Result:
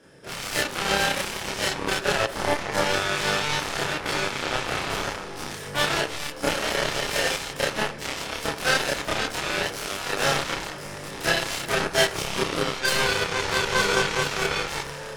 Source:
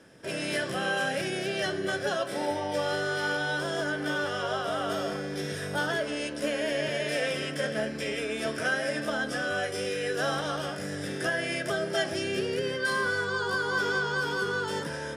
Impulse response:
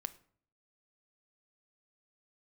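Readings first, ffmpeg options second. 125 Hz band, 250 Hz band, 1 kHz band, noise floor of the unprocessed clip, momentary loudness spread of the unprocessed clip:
+3.5 dB, +0.5 dB, +6.0 dB, -36 dBFS, 4 LU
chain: -filter_complex "[0:a]aeval=exprs='0.178*(cos(1*acos(clip(val(0)/0.178,-1,1)))-cos(1*PI/2))+0.0398*(cos(7*acos(clip(val(0)/0.178,-1,1)))-cos(7*PI/2))':c=same,asplit=2[a][b];[1:a]atrim=start_sample=2205,adelay=29[c];[b][c]afir=irnorm=-1:irlink=0,volume=5dB[d];[a][d]amix=inputs=2:normalize=0,volume=3.5dB"

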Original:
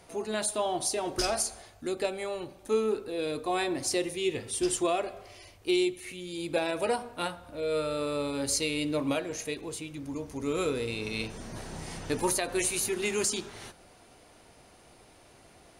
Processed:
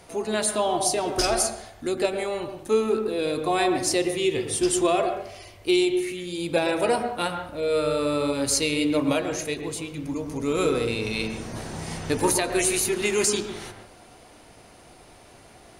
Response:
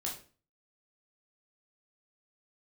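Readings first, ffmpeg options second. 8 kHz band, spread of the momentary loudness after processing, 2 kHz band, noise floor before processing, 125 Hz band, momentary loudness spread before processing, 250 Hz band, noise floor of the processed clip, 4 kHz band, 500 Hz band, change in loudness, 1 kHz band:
+5.5 dB, 10 LU, +6.0 dB, -57 dBFS, +6.5 dB, 11 LU, +6.5 dB, -50 dBFS, +5.5 dB, +6.5 dB, +6.0 dB, +7.0 dB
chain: -filter_complex "[0:a]asplit=2[a][b];[1:a]atrim=start_sample=2205,lowpass=2.5k,adelay=112[c];[b][c]afir=irnorm=-1:irlink=0,volume=-7.5dB[d];[a][d]amix=inputs=2:normalize=0,volume=5.5dB"

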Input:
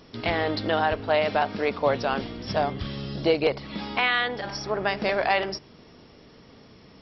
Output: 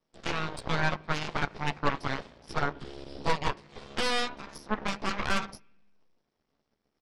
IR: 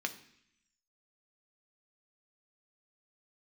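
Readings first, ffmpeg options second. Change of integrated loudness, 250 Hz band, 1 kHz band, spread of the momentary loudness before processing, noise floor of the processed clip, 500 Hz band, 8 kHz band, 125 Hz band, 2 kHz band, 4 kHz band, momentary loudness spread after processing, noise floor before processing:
-6.5 dB, -6.0 dB, -6.0 dB, 8 LU, -81 dBFS, -12.0 dB, n/a, -2.5 dB, -5.5 dB, -4.5 dB, 9 LU, -52 dBFS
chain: -filter_complex "[0:a]asplit=2[a][b];[b]adelay=14,volume=-2dB[c];[a][c]amix=inputs=2:normalize=0,aeval=exprs='0.531*(cos(1*acos(clip(val(0)/0.531,-1,1)))-cos(1*PI/2))+0.188*(cos(3*acos(clip(val(0)/0.531,-1,1)))-cos(3*PI/2))+0.015*(cos(5*acos(clip(val(0)/0.531,-1,1)))-cos(5*PI/2))+0.119*(cos(6*acos(clip(val(0)/0.531,-1,1)))-cos(6*PI/2))+0.00335*(cos(7*acos(clip(val(0)/0.531,-1,1)))-cos(7*PI/2))':c=same,asplit=2[d][e];[1:a]atrim=start_sample=2205,lowpass=2.3k[f];[e][f]afir=irnorm=-1:irlink=0,volume=-11.5dB[g];[d][g]amix=inputs=2:normalize=0,volume=-6.5dB"

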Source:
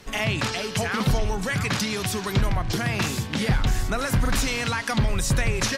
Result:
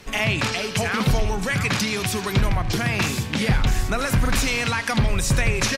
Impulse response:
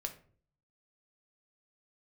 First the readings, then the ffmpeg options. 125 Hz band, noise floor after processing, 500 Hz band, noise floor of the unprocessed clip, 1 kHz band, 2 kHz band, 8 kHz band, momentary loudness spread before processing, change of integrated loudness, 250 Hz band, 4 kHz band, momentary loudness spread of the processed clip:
+2.0 dB, -30 dBFS, +2.0 dB, -32 dBFS, +2.0 dB, +3.5 dB, +2.0 dB, 2 LU, +2.5 dB, +2.0 dB, +2.5 dB, 2 LU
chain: -filter_complex "[0:a]equalizer=f=2.4k:t=o:w=0.31:g=4,asplit=2[a][b];[b]aecho=0:1:81:0.158[c];[a][c]amix=inputs=2:normalize=0,volume=2dB"

